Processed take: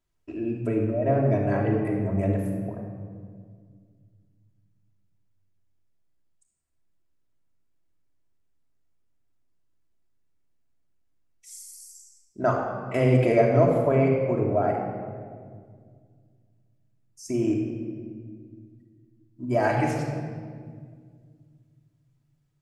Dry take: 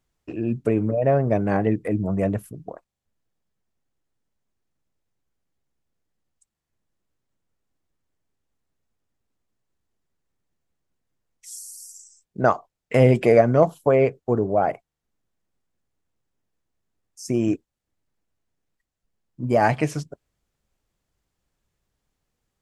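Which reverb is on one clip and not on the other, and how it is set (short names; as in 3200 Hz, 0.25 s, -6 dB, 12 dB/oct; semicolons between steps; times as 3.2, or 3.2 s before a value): shoebox room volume 3100 m³, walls mixed, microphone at 2.9 m; gain -7.5 dB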